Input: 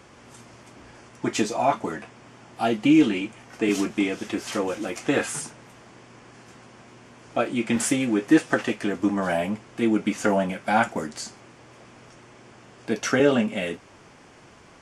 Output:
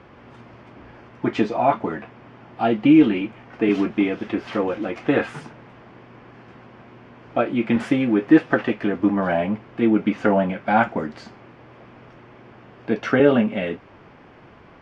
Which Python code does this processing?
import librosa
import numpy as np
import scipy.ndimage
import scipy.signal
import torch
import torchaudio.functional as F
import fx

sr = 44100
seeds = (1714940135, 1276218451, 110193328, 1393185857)

y = fx.air_absorb(x, sr, metres=350.0)
y = F.gain(torch.from_numpy(y), 4.5).numpy()